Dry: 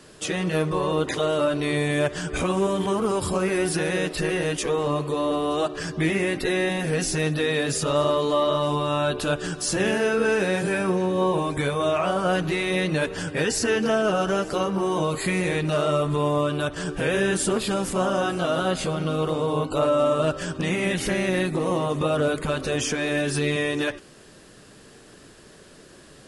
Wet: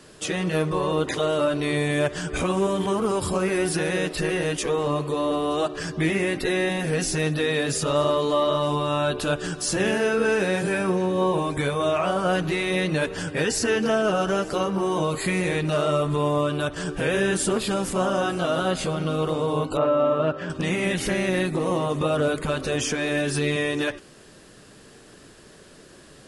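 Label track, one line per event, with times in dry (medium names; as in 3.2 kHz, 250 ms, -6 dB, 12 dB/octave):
19.770000	20.500000	band-pass 120–2400 Hz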